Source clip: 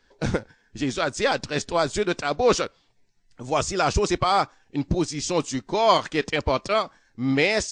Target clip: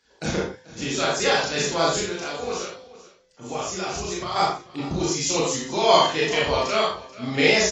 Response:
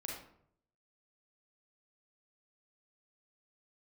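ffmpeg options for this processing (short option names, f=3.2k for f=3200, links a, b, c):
-filter_complex "[0:a]highpass=f=120:p=1,highshelf=f=3.3k:g=10,bandreject=f=256.2:t=h:w=4,bandreject=f=512.4:t=h:w=4,bandreject=f=768.6:t=h:w=4,bandreject=f=1.0248k:t=h:w=4,bandreject=f=1.281k:t=h:w=4,bandreject=f=1.5372k:t=h:w=4,bandreject=f=1.7934k:t=h:w=4,bandreject=f=2.0496k:t=h:w=4,bandreject=f=2.3058k:t=h:w=4,bandreject=f=2.562k:t=h:w=4,bandreject=f=2.8182k:t=h:w=4,bandreject=f=3.0744k:t=h:w=4,bandreject=f=3.3306k:t=h:w=4,bandreject=f=3.5868k:t=h:w=4,bandreject=f=3.843k:t=h:w=4,bandreject=f=4.0992k:t=h:w=4,bandreject=f=4.3554k:t=h:w=4,bandreject=f=4.6116k:t=h:w=4,bandreject=f=4.8678k:t=h:w=4,bandreject=f=5.124k:t=h:w=4,bandreject=f=5.3802k:t=h:w=4,bandreject=f=5.6364k:t=h:w=4,bandreject=f=5.8926k:t=h:w=4,asettb=1/sr,asplit=3[a][b][c];[a]atrim=end=1.994[d];[b]atrim=start=1.99:end=4.36,asetpts=PTS-STARTPTS,afade=t=in:d=0.004:c=qsin,afade=t=out:st=2.366:d=0.004:c=qsin,acompressor=threshold=-27dB:ratio=6[e];[c]atrim=start=4.356[f];[d][e]acrossfade=d=0.004:c1=hsin:c2=qsin[g];[g][f]acrossfade=d=0.004:c1=qsin:c2=hsin,asplit=2[h][i];[i]adelay=37,volume=-3dB[j];[h][j]amix=inputs=2:normalize=0,aecho=1:1:437:0.119[k];[1:a]atrim=start_sample=2205,afade=t=out:st=0.26:d=0.01,atrim=end_sample=11907,asetrate=61740,aresample=44100[l];[k][l]afir=irnorm=-1:irlink=0,volume=2dB" -ar 24000 -c:a aac -b:a 24k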